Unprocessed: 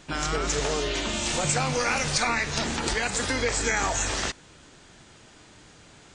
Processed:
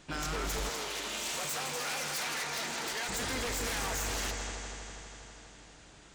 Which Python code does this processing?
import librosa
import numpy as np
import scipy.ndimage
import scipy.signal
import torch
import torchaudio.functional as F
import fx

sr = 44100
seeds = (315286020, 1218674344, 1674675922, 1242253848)

y = fx.echo_heads(x, sr, ms=81, heads='second and third', feedback_pct=70, wet_db=-11.0)
y = 10.0 ** (-23.0 / 20.0) * (np.abs((y / 10.0 ** (-23.0 / 20.0) + 3.0) % 4.0 - 2.0) - 1.0)
y = fx.highpass(y, sr, hz=510.0, slope=6, at=(0.69, 3.09))
y = F.gain(torch.from_numpy(y), -6.0).numpy()